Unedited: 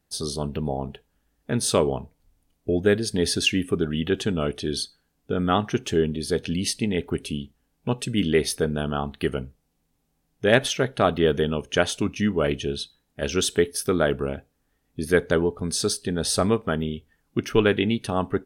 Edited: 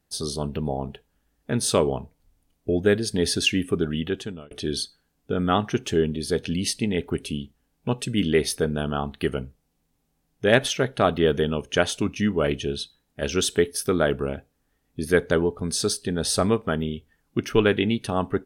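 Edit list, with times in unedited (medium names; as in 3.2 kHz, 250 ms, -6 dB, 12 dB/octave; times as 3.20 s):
3.91–4.51 s: fade out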